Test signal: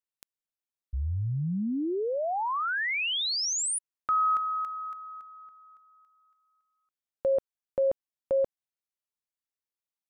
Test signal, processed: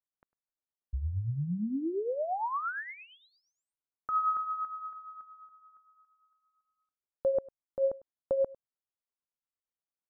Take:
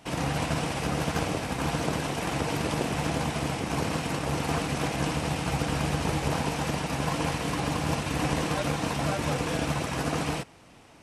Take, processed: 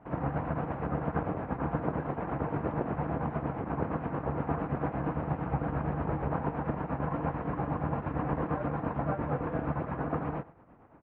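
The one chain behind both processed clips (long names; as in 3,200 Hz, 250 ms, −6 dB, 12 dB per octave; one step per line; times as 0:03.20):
shaped tremolo triangle 8.7 Hz, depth 65%
low-pass filter 1,500 Hz 24 dB per octave
on a send: single-tap delay 101 ms −21.5 dB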